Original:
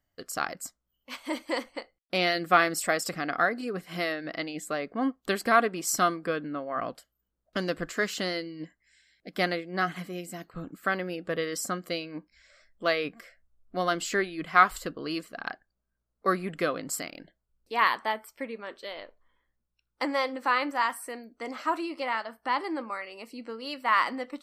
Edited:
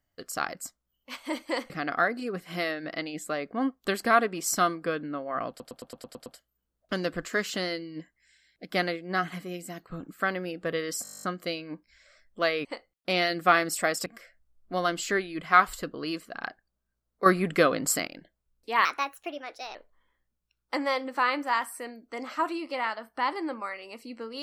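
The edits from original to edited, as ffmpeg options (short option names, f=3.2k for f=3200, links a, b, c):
-filter_complex "[0:a]asplit=25[a][b][c][d][e][f][g][h][i][j][k][l][m][n][o][p][q][r][s][t][u][v][w][x][y];[a]atrim=end=1.702[z];[b]atrim=start=3.108:end=7.012[aa];[c]atrim=start=6.898:end=7.012[ab];[d]atrim=start=6.898:end=7.012[ac];[e]atrim=start=6.898:end=7.012[ad];[f]atrim=start=6.898:end=7.012[ae];[g]atrim=start=6.898:end=7.012[af];[h]atrim=start=6.898:end=7.012[ag];[i]atrim=start=6.898:end=11.692[ah];[j]atrim=start=11.668:end=11.692[ai];[k]atrim=start=11.668:end=11.692[aj];[l]atrim=start=11.668:end=11.692[ak];[m]atrim=start=11.668:end=11.692[al];[n]atrim=start=11.668:end=11.692[am];[o]atrim=start=11.668:end=11.692[an];[p]atrim=start=11.668:end=11.692[ao];[q]atrim=start=11.668:end=11.692[ap];[r]atrim=start=11.668:end=11.692[aq];[s]atrim=start=11.668:end=13.092[ar];[t]atrim=start=1.698:end=3.112[as];[u]atrim=start=13.088:end=16.292[at];[v]atrim=start=16.288:end=17.102,asetpts=PTS-STARTPTS,volume=6.5dB[au];[w]atrim=start=17.098:end=17.884[av];[x]atrim=start=17.88:end=19.03,asetpts=PTS-STARTPTS,asetrate=56448,aresample=44100,atrim=end_sample=39621,asetpts=PTS-STARTPTS[aw];[y]atrim=start=19.026[ax];[z][aa]acrossfade=d=0.004:c1=hsin:c2=hsin[ay];[ay][ab]acrossfade=d=0.004:c1=hsin:c2=hsin[az];[az][ac]acrossfade=d=0.004:c1=hsin:c2=hsin[ba];[ba][ad]acrossfade=d=0.004:c1=hsin:c2=hsin[bb];[bb][ae]acrossfade=d=0.004:c1=hsin:c2=hsin[bc];[bc][af]acrossfade=d=0.004:c1=hsin:c2=hsin[bd];[bd][ag]acrossfade=d=0.004:c1=hsin:c2=hsin[be];[be][ah]acrossfade=d=0.004:c1=hsin:c2=hsin[bf];[bf][ai]acrossfade=d=0.004:c1=hsin:c2=hsin[bg];[bg][aj]acrossfade=d=0.004:c1=hsin:c2=hsin[bh];[bh][ak]acrossfade=d=0.004:c1=hsin:c2=hsin[bi];[bi][al]acrossfade=d=0.004:c1=hsin:c2=hsin[bj];[bj][am]acrossfade=d=0.004:c1=hsin:c2=hsin[bk];[bk][an]acrossfade=d=0.004:c1=hsin:c2=hsin[bl];[bl][ao]acrossfade=d=0.004:c1=hsin:c2=hsin[bm];[bm][ap]acrossfade=d=0.004:c1=hsin:c2=hsin[bn];[bn][aq]acrossfade=d=0.004:c1=hsin:c2=hsin[bo];[bo][ar]acrossfade=d=0.004:c1=hsin:c2=hsin[bp];[bp][as]acrossfade=d=0.004:c1=hsin:c2=hsin[bq];[bq][at]acrossfade=d=0.004:c1=hsin:c2=hsin[br];[br][au]acrossfade=d=0.004:c1=hsin:c2=hsin[bs];[bs][av]acrossfade=d=0.004:c1=hsin:c2=hsin[bt];[bt][aw]acrossfade=d=0.004:c1=hsin:c2=hsin[bu];[bu][ax]acrossfade=d=0.004:c1=hsin:c2=hsin"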